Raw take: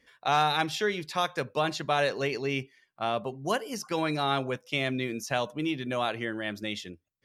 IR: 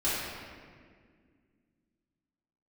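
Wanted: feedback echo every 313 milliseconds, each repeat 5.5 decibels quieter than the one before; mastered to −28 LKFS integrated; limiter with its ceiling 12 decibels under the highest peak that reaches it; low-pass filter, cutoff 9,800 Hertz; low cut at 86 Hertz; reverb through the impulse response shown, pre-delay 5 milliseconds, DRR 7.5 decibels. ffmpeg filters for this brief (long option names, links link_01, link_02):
-filter_complex "[0:a]highpass=86,lowpass=9800,alimiter=limit=-24dB:level=0:latency=1,aecho=1:1:313|626|939|1252|1565|1878|2191:0.531|0.281|0.149|0.079|0.0419|0.0222|0.0118,asplit=2[link_01][link_02];[1:a]atrim=start_sample=2205,adelay=5[link_03];[link_02][link_03]afir=irnorm=-1:irlink=0,volume=-18dB[link_04];[link_01][link_04]amix=inputs=2:normalize=0,volume=5.5dB"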